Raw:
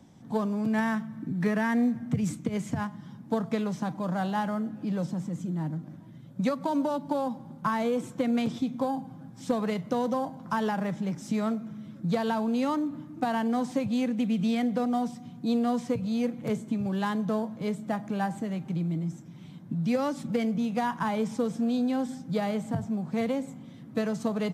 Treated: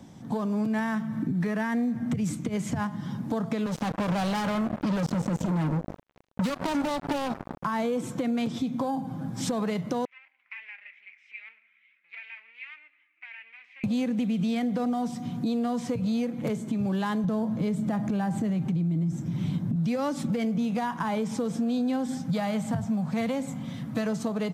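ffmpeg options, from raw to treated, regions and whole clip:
ffmpeg -i in.wav -filter_complex "[0:a]asettb=1/sr,asplit=3[link_01][link_02][link_03];[link_01]atrim=end=3.664[link_04];[link_02]atrim=start=3.66:end=7.65,asetpts=PTS-STARTPTS,afade=type=in:duration=0.004:curve=qsin,afade=type=out:start_time=3.986:duration=0.004:curve=qsin,highshelf=frequency=5200:gain=-7.5,acrossover=split=120|3000[link_05][link_06][link_07];[link_06]acompressor=threshold=-36dB:ratio=4:attack=3.2:release=140:knee=2.83:detection=peak[link_08];[link_05][link_08][link_07]amix=inputs=3:normalize=0,acrusher=bits=5:mix=0:aa=0.5[link_09];[link_03]atrim=start=7.646[link_10];[link_04][link_09]acrossfade=duration=0.004:curve1=hsin:curve2=qsin[link_11];[link_11][link_10]acrossfade=duration=0.004:curve1=qsin:curve2=hsin,asettb=1/sr,asplit=3[link_12][link_13][link_14];[link_12]atrim=end=10.054[link_15];[link_13]atrim=start=10.05:end=13.84,asetpts=PTS-STARTPTS,afade=type=in:duration=0.004:curve=qsin,afade=type=out:start_time=3.786:duration=0.004:curve=qsin,flanger=delay=2.3:depth=2.5:regen=77:speed=1:shape=triangular,aeval=exprs='clip(val(0),-1,0.01)':channel_layout=same,asuperpass=centerf=2300:order=4:qfactor=4[link_16];[link_14]atrim=start=13.836[link_17];[link_15][link_16]acrossfade=duration=0.004:curve1=hsin:curve2=qsin[link_18];[link_18][link_17]acrossfade=duration=0.004:curve1=qsin:curve2=hsin,asettb=1/sr,asplit=3[link_19][link_20][link_21];[link_19]atrim=end=17.244[link_22];[link_20]atrim=start=17.24:end=19.76,asetpts=PTS-STARTPTS,afade=type=in:duration=0.004:curve=qsin,afade=type=out:start_time=2.516:duration=0.004:curve=qsin,lowshelf=frequency=200:gain=11.5,acompressor=threshold=-27dB:ratio=2:attack=3.2:release=140:knee=1:detection=peak[link_23];[link_21]atrim=start=19.756[link_24];[link_22][link_23]acrossfade=duration=0.004:curve1=hsin:curve2=qsin[link_25];[link_25][link_24]acrossfade=duration=0.004:curve1=qsin:curve2=hsin,asettb=1/sr,asplit=3[link_26][link_27][link_28];[link_26]atrim=end=22.174[link_29];[link_27]atrim=start=22.17:end=24.06,asetpts=PTS-STARTPTS,afade=type=in:duration=0.004:curve=qsin,afade=type=out:start_time=1.886:duration=0.004:curve=qsin,equalizer=frequency=370:width_type=o:width=0.61:gain=-12.5,asoftclip=type=hard:threshold=-22.5dB[link_30];[link_28]atrim=start=24.056[link_31];[link_29][link_30]acrossfade=duration=0.004:curve1=hsin:curve2=qsin[link_32];[link_32][link_31]acrossfade=duration=0.004:curve1=qsin:curve2=hsin,dynaudnorm=framelen=300:gausssize=5:maxgain=6.5dB,alimiter=limit=-24dB:level=0:latency=1:release=414,acompressor=threshold=-32dB:ratio=2.5,volume=6.5dB" out.wav

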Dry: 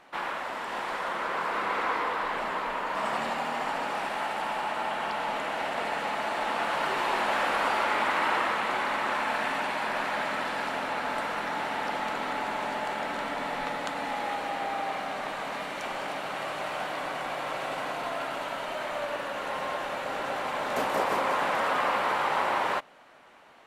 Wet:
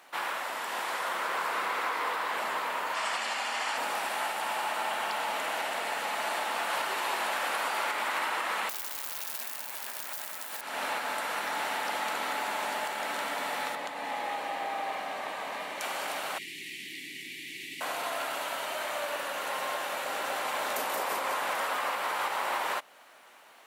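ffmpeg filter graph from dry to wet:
ffmpeg -i in.wav -filter_complex "[0:a]asettb=1/sr,asplit=3[link_01][link_02][link_03];[link_01]atrim=end=2.944[link_04];[link_02]atrim=start=2.94:end=3.77,asetpts=PTS-STARTPTS,afade=type=in:duration=0.004:curve=qsin,afade=type=out:start_time=0.826:duration=0.004:curve=qsin,highpass=180,lowpass=7000,tiltshelf=frequency=1300:gain=-5.5,bandreject=frequency=3800:width=18[link_05];[link_03]atrim=start=3.766[link_06];[link_04][link_05]acrossfade=duration=0.004:curve1=hsin:curve2=qsin[link_07];[link_07][link_06]acrossfade=duration=0.004:curve1=qsin:curve2=hsin,asettb=1/sr,asplit=3[link_08][link_09][link_10];[link_08]atrim=end=8.694[link_11];[link_09]atrim=start=8.69:end=10.61,asetpts=PTS-STARTPTS,afade=type=in:duration=0.004:curve=qsin,afade=type=out:start_time=1.916:duration=0.004:curve=qsin,highshelf=frequency=7600:gain=10,acrusher=bits=5:mix=0:aa=0.5,aeval=exprs='(mod(11.9*val(0)+1,2)-1)/11.9':channel_layout=same[link_12];[link_10]atrim=start=10.606[link_13];[link_11][link_12]acrossfade=duration=0.004:curve1=hsin:curve2=qsin[link_14];[link_14][link_13]acrossfade=duration=0.004:curve1=qsin:curve2=hsin,asettb=1/sr,asplit=3[link_15][link_16][link_17];[link_15]atrim=end=13.754[link_18];[link_16]atrim=start=13.75:end=15.81,asetpts=PTS-STARTPTS,afade=type=in:duration=0.004:curve=qsin,afade=type=out:start_time=2.056:duration=0.004:curve=qsin,highshelf=frequency=4200:gain=-11,bandreject=frequency=1400:width=7.1[link_19];[link_17]atrim=start=15.806[link_20];[link_18][link_19]acrossfade=duration=0.004:curve1=hsin:curve2=qsin[link_21];[link_21][link_20]acrossfade=duration=0.004:curve1=qsin:curve2=hsin,asettb=1/sr,asplit=3[link_22][link_23][link_24];[link_22]atrim=end=16.384[link_25];[link_23]atrim=start=16.38:end=17.81,asetpts=PTS-STARTPTS,afade=type=in:duration=0.004:curve=qsin,afade=type=out:start_time=1.426:duration=0.004:curve=qsin,asuperstop=centerf=850:order=20:qfactor=0.56,highshelf=frequency=4600:gain=-8.5[link_26];[link_24]atrim=start=17.806[link_27];[link_25][link_26]acrossfade=duration=0.004:curve1=hsin:curve2=qsin[link_28];[link_28][link_27]acrossfade=duration=0.004:curve1=qsin:curve2=hsin,aemphasis=mode=production:type=50fm,alimiter=limit=-20dB:level=0:latency=1:release=228,highpass=frequency=490:poles=1" out.wav

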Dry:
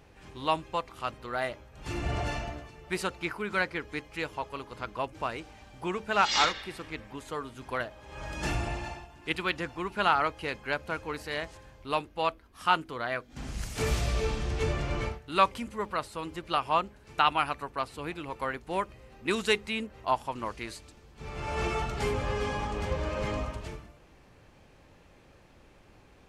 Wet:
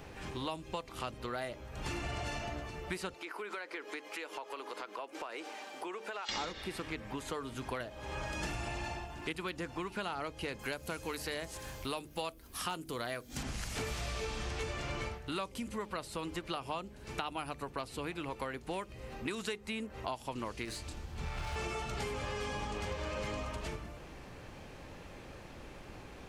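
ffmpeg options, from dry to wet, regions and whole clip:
ffmpeg -i in.wav -filter_complex "[0:a]asettb=1/sr,asplit=3[link_01][link_02][link_03];[link_01]atrim=end=3.144[link_04];[link_02]atrim=start=3.14:end=6.29,asetpts=PTS-STARTPTS,afade=type=in:duration=0.004:curve=qsin,afade=type=out:start_time=3.146:duration=0.004:curve=qsin,highpass=frequency=320:width=0.5412,highpass=frequency=320:width=1.3066,acompressor=threshold=-45dB:ratio=4:attack=3.2:release=140:knee=1:detection=peak[link_05];[link_03]atrim=start=6.286[link_06];[link_04][link_05]acrossfade=duration=0.004:curve1=hsin:curve2=qsin[link_07];[link_07][link_06]acrossfade=duration=0.004:curve1=qsin:curve2=hsin,asettb=1/sr,asplit=3[link_08][link_09][link_10];[link_08]atrim=end=10.594[link_11];[link_09]atrim=start=10.59:end=13.43,asetpts=PTS-STARTPTS,afade=type=in:duration=0.004:curve=qsin,afade=type=out:start_time=2.836:duration=0.004:curve=qsin,aemphasis=mode=production:type=75kf,asoftclip=type=hard:threshold=-11dB[link_12];[link_10]atrim=start=13.426[link_13];[link_11][link_12]acrossfade=duration=0.004:curve1=hsin:curve2=qsin[link_14];[link_14][link_13]acrossfade=duration=0.004:curve1=qsin:curve2=hsin,asettb=1/sr,asplit=3[link_15][link_16][link_17];[link_15]atrim=end=20.654[link_18];[link_16]atrim=start=20.65:end=21.56,asetpts=PTS-STARTPTS,afade=type=in:duration=0.004:curve=qsin,afade=type=out:start_time=0.906:duration=0.004:curve=qsin,asoftclip=type=hard:threshold=-37.5dB,asplit=2[link_19][link_20];[link_20]adelay=26,volume=-6dB[link_21];[link_19][link_21]amix=inputs=2:normalize=0,atrim=end_sample=40131,asubboost=boost=10:cutoff=160[link_22];[link_17]atrim=start=21.556[link_23];[link_18][link_22]acrossfade=duration=0.004:curve1=hsin:curve2=qsin[link_24];[link_24][link_23]acrossfade=duration=0.004:curve1=qsin:curve2=hsin,acrossover=split=650|2200|5400[link_25][link_26][link_27][link_28];[link_25]acompressor=threshold=-38dB:ratio=4[link_29];[link_26]acompressor=threshold=-44dB:ratio=4[link_30];[link_27]acompressor=threshold=-46dB:ratio=4[link_31];[link_28]acompressor=threshold=-50dB:ratio=4[link_32];[link_29][link_30][link_31][link_32]amix=inputs=4:normalize=0,bandreject=frequency=50:width_type=h:width=6,bandreject=frequency=100:width_type=h:width=6,bandreject=frequency=150:width_type=h:width=6,acompressor=threshold=-47dB:ratio=2.5,volume=8dB" out.wav

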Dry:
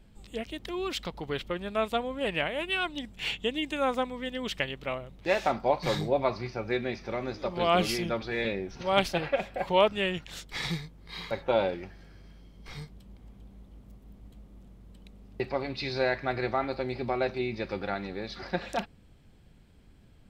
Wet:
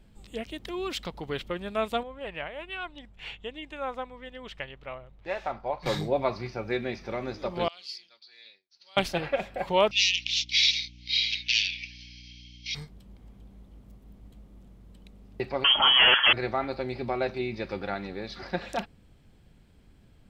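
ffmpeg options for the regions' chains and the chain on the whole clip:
ffmpeg -i in.wav -filter_complex "[0:a]asettb=1/sr,asplit=3[link_01][link_02][link_03];[link_01]atrim=end=2.034[link_04];[link_02]atrim=start=2.03:end=5.86,asetpts=PTS-STARTPTS,afade=type=in:duration=0.004:curve=qsin,afade=type=out:start_time=3.826:duration=0.004:curve=qsin,lowpass=frequency=1200:poles=1,equalizer=frequency=240:width_type=o:width=2.3:gain=-11.5[link_05];[link_03]atrim=start=5.856[link_06];[link_04][link_05]acrossfade=duration=0.004:curve1=hsin:curve2=qsin[link_07];[link_07][link_06]acrossfade=duration=0.004:curve1=qsin:curve2=hsin,asettb=1/sr,asplit=3[link_08][link_09][link_10];[link_08]atrim=end=7.684[link_11];[link_09]atrim=start=7.68:end=8.97,asetpts=PTS-STARTPTS,afade=type=in:duration=0.004:curve=qsin,afade=type=out:start_time=1.286:duration=0.004:curve=qsin,bandpass=frequency=4500:width_type=q:width=7.4,agate=range=-33dB:threshold=-60dB:ratio=3:release=100:detection=peak[link_12];[link_10]atrim=start=8.966[link_13];[link_11][link_12]acrossfade=duration=0.004:curve1=hsin:curve2=qsin[link_14];[link_14][link_13]acrossfade=duration=0.004:curve1=qsin:curve2=hsin,asettb=1/sr,asplit=3[link_15][link_16][link_17];[link_15]atrim=end=9.914[link_18];[link_16]atrim=start=9.91:end=12.75,asetpts=PTS-STARTPTS,afade=type=in:duration=0.004:curve=qsin,afade=type=out:start_time=2.836:duration=0.004:curve=qsin,aeval=exprs='0.224*sin(PI/2*5.01*val(0)/0.224)':channel_layout=same,asuperpass=centerf=3800:order=12:qfactor=1,aeval=exprs='val(0)+0.00355*(sin(2*PI*60*n/s)+sin(2*PI*2*60*n/s)/2+sin(2*PI*3*60*n/s)/3+sin(2*PI*4*60*n/s)/4+sin(2*PI*5*60*n/s)/5)':channel_layout=same[link_19];[link_17]atrim=start=12.746[link_20];[link_18][link_19]acrossfade=duration=0.004:curve1=hsin:curve2=qsin[link_21];[link_21][link_20]acrossfade=duration=0.004:curve1=qsin:curve2=hsin,asettb=1/sr,asplit=3[link_22][link_23][link_24];[link_22]atrim=end=15.644[link_25];[link_23]atrim=start=15.64:end=16.33,asetpts=PTS-STARTPTS,afade=type=in:duration=0.004:curve=qsin,afade=type=out:start_time=0.686:duration=0.004:curve=qsin,highpass=frequency=89:width=0.5412,highpass=frequency=89:width=1.3066,aeval=exprs='0.2*sin(PI/2*5.01*val(0)/0.2)':channel_layout=same,lowpass=frequency=2900:width_type=q:width=0.5098,lowpass=frequency=2900:width_type=q:width=0.6013,lowpass=frequency=2900:width_type=q:width=0.9,lowpass=frequency=2900:width_type=q:width=2.563,afreqshift=-3400[link_26];[link_24]atrim=start=16.326[link_27];[link_25][link_26]acrossfade=duration=0.004:curve1=hsin:curve2=qsin[link_28];[link_28][link_27]acrossfade=duration=0.004:curve1=qsin:curve2=hsin" out.wav

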